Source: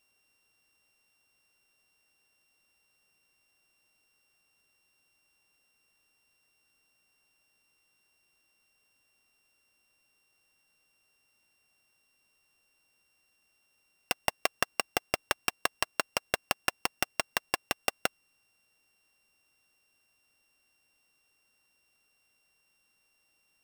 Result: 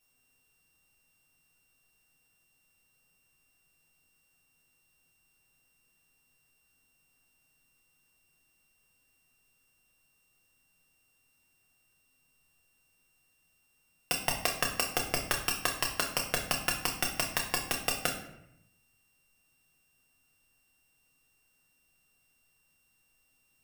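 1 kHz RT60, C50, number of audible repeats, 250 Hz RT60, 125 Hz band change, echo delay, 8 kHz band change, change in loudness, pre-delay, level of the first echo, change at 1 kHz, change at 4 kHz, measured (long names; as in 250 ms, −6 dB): 0.80 s, 7.5 dB, no echo audible, 1.1 s, +7.5 dB, no echo audible, +4.5 dB, +1.5 dB, 4 ms, no echo audible, −1.0 dB, +1.5 dB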